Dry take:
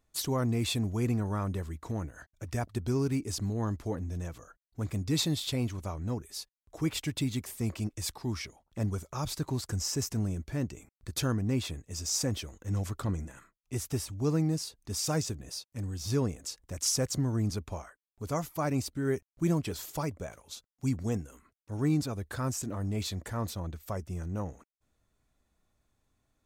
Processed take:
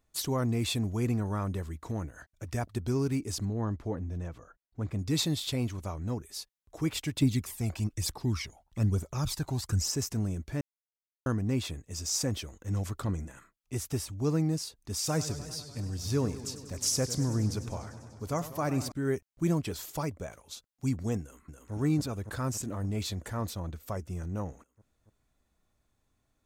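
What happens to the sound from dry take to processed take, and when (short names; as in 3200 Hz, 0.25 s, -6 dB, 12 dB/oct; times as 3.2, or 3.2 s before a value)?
3.45–4.99 LPF 2100 Hz 6 dB/oct
7.22–9.92 phaser 1.1 Hz, delay 1.5 ms, feedback 54%
10.61–11.26 mute
14.95–18.92 warbling echo 99 ms, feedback 77%, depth 124 cents, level -14 dB
21.2–21.73 echo throw 0.28 s, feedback 80%, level -2.5 dB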